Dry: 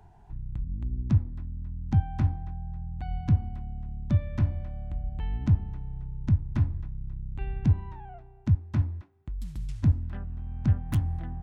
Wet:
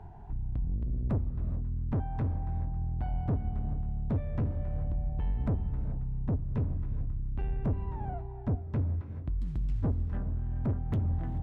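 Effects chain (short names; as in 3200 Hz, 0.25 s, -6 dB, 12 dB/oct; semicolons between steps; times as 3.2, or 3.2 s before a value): tracing distortion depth 0.14 ms; LPF 1100 Hz 6 dB/oct; in parallel at +3 dB: compressor, threshold -37 dBFS, peak gain reduction 18.5 dB; on the sum: soft clip -25.5 dBFS, distortion -6 dB; reverb, pre-delay 3 ms, DRR 10.5 dB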